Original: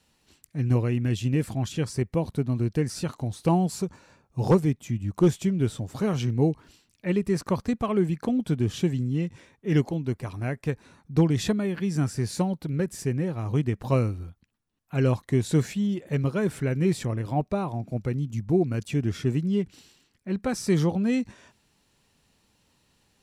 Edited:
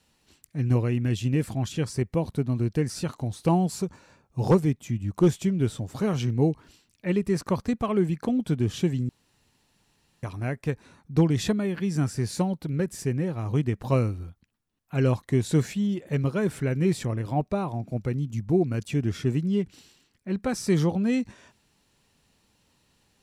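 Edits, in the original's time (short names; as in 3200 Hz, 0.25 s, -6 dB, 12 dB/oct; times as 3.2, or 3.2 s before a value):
9.09–10.23 room tone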